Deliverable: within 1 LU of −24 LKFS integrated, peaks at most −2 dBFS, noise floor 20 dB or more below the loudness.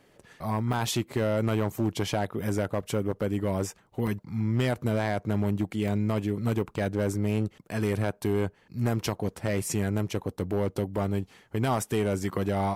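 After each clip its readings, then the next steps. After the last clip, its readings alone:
share of clipped samples 1.0%; peaks flattened at −18.5 dBFS; number of dropouts 4; longest dropout 2.0 ms; integrated loudness −29.0 LKFS; sample peak −18.5 dBFS; target loudness −24.0 LKFS
→ clipped peaks rebuilt −18.5 dBFS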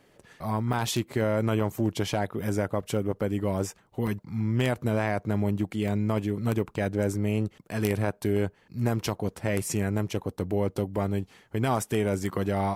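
share of clipped samples 0.0%; number of dropouts 4; longest dropout 2.0 ms
→ repair the gap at 0:00.73/0:02.44/0:04.07/0:05.88, 2 ms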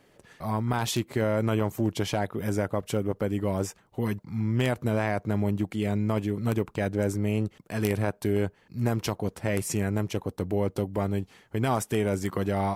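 number of dropouts 0; integrated loudness −28.5 LKFS; sample peak −9.5 dBFS; target loudness −24.0 LKFS
→ level +4.5 dB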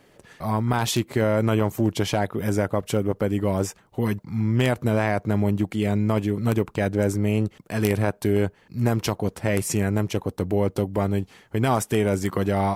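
integrated loudness −24.0 LKFS; sample peak −5.0 dBFS; background noise floor −57 dBFS

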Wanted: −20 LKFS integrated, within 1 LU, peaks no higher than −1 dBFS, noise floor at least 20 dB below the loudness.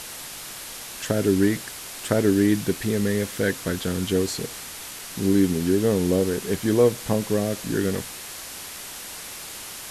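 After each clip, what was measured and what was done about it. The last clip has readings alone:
background noise floor −38 dBFS; target noise floor −45 dBFS; integrated loudness −24.5 LKFS; sample peak −7.5 dBFS; target loudness −20.0 LKFS
→ broadband denoise 7 dB, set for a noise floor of −38 dBFS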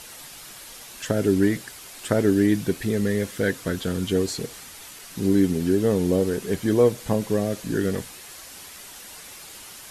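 background noise floor −43 dBFS; target noise floor −44 dBFS
→ broadband denoise 6 dB, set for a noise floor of −43 dBFS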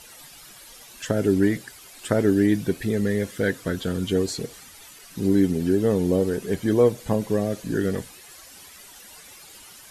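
background noise floor −47 dBFS; integrated loudness −23.5 LKFS; sample peak −7.5 dBFS; target loudness −20.0 LKFS
→ level +3.5 dB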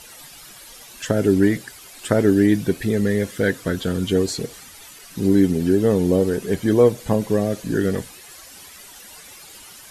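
integrated loudness −20.0 LKFS; sample peak −4.0 dBFS; background noise floor −43 dBFS

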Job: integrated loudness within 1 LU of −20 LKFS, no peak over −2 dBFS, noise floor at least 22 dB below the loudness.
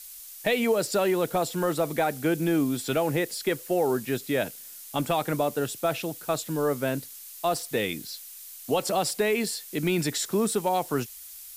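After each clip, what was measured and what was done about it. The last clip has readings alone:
background noise floor −44 dBFS; target noise floor −49 dBFS; integrated loudness −27.0 LKFS; sample peak −12.5 dBFS; target loudness −20.0 LKFS
→ broadband denoise 6 dB, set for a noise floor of −44 dBFS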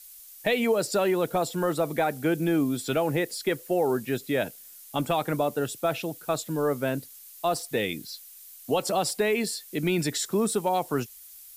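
background noise floor −48 dBFS; target noise floor −50 dBFS
→ broadband denoise 6 dB, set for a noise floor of −48 dBFS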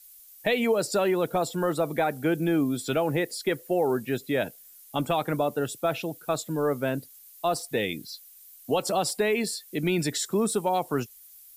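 background noise floor −51 dBFS; integrated loudness −27.5 LKFS; sample peak −13.0 dBFS; target loudness −20.0 LKFS
→ level +7.5 dB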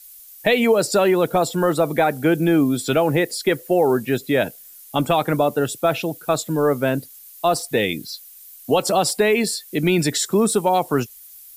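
integrated loudness −20.0 LKFS; sample peak −5.5 dBFS; background noise floor −44 dBFS

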